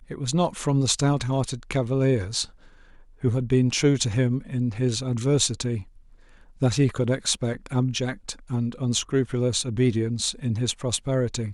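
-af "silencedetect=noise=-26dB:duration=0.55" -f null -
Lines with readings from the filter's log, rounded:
silence_start: 2.43
silence_end: 3.24 | silence_duration: 0.81
silence_start: 5.80
silence_end: 6.62 | silence_duration: 0.82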